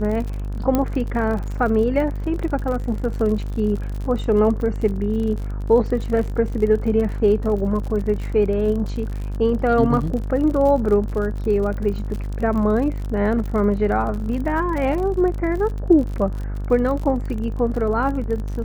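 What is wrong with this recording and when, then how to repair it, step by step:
mains buzz 50 Hz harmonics 36 −26 dBFS
surface crackle 49 per second −28 dBFS
0:00.75: click −7 dBFS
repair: click removal
hum removal 50 Hz, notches 36

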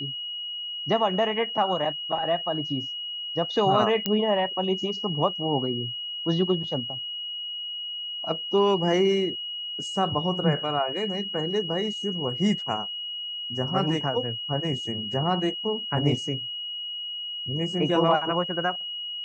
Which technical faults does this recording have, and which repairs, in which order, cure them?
whistle 2,900 Hz −31 dBFS
0:04.06: click −9 dBFS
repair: click removal
notch filter 2,900 Hz, Q 30

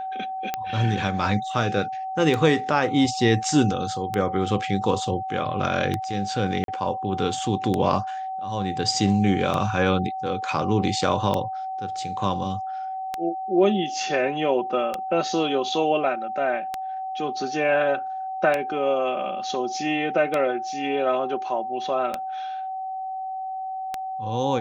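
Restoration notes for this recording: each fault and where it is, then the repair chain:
scratch tick 33 1/3 rpm −11 dBFS
whistle 760 Hz −28 dBFS
0:06.64–0:06.68: drop-out 42 ms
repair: click removal
notch filter 760 Hz, Q 30
repair the gap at 0:06.64, 42 ms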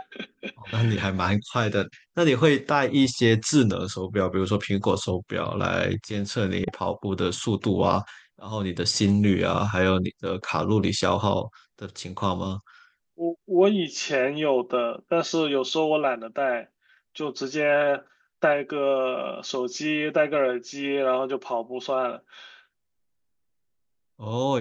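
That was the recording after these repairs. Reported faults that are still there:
none of them is left

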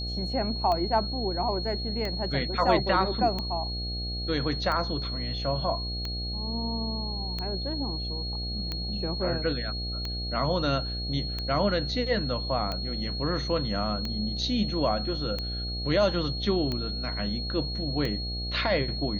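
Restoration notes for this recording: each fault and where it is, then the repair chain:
mains buzz 60 Hz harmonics 13 −34 dBFS
scratch tick 45 rpm −18 dBFS
whistle 4,300 Hz −34 dBFS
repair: click removal
hum removal 60 Hz, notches 13
notch filter 4,300 Hz, Q 30

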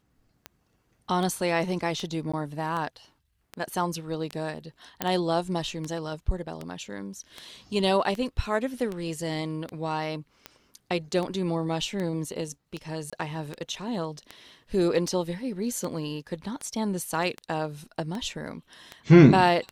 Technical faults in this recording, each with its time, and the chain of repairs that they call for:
scratch tick 78 rpm −20 dBFS
0:02.32–0:02.33: drop-out 15 ms
0:05.02: click −9 dBFS
0:13.10–0:13.13: drop-out 26 ms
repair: click removal
repair the gap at 0:02.32, 15 ms
repair the gap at 0:13.10, 26 ms

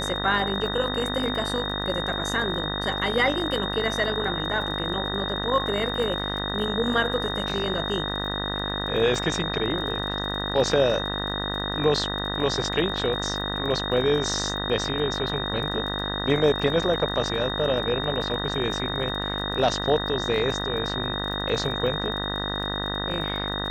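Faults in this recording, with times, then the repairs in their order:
mains buzz 50 Hz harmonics 39 −31 dBFS
surface crackle 35 per second −34 dBFS
whistle 3,700 Hz −30 dBFS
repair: click removal
hum removal 50 Hz, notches 39
notch filter 3,700 Hz, Q 30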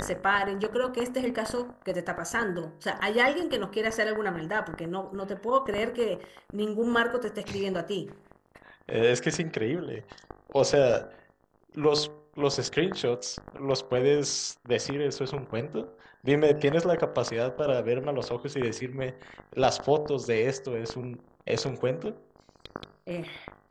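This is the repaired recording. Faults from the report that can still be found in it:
none of them is left

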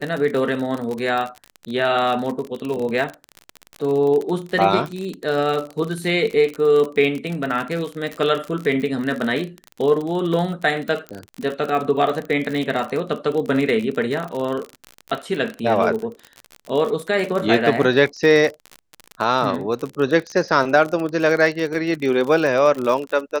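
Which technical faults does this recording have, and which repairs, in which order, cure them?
surface crackle 45 per second −24 dBFS
0:11.09: click −17 dBFS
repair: click removal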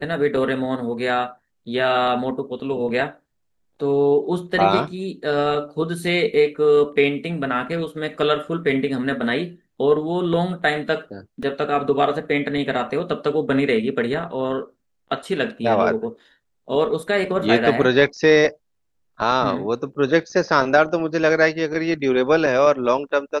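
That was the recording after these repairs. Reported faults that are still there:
none of them is left

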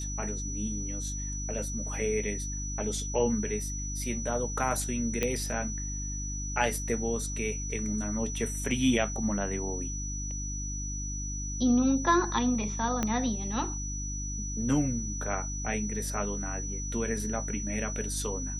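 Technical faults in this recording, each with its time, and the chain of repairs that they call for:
mains hum 50 Hz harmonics 6 −36 dBFS
whistle 5,900 Hz −37 dBFS
0:05.23: click −13 dBFS
0:13.03: click −14 dBFS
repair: click removal
notch filter 5,900 Hz, Q 30
hum removal 50 Hz, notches 6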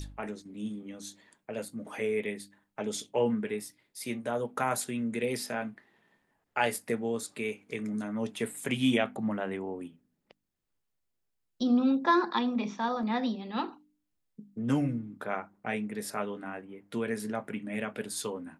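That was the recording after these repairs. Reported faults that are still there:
0:13.03: click

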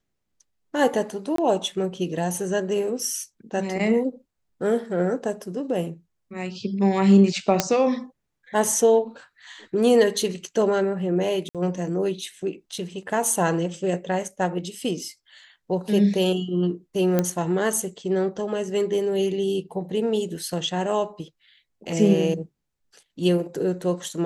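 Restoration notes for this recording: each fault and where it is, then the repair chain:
0:01.36–0:01.38: drop-out 23 ms
0:07.60: click −2 dBFS
0:11.49–0:11.55: drop-out 57 ms
0:17.19: click −8 dBFS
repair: click removal
repair the gap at 0:01.36, 23 ms
repair the gap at 0:11.49, 57 ms

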